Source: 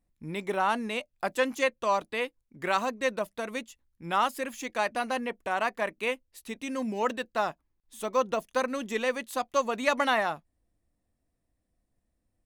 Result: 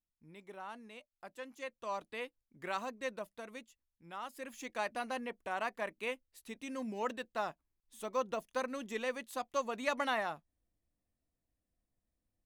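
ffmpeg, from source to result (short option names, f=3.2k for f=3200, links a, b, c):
-af "volume=-0.5dB,afade=t=in:st=1.54:d=0.54:silence=0.354813,afade=t=out:st=3.08:d=1.13:silence=0.398107,afade=t=in:st=4.21:d=0.41:silence=0.298538"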